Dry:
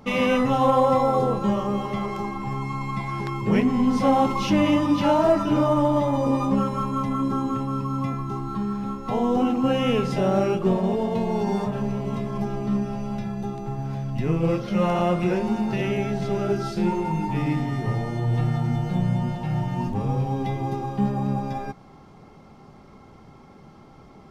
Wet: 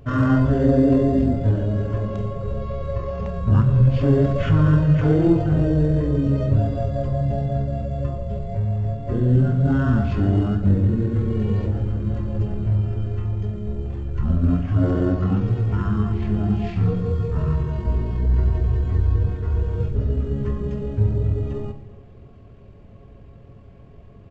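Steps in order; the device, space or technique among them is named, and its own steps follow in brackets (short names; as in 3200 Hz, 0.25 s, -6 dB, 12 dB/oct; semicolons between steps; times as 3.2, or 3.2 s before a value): monster voice (pitch shift -11.5 st; low shelf 140 Hz +6 dB; reverb RT60 1.2 s, pre-delay 6 ms, DRR 8.5 dB)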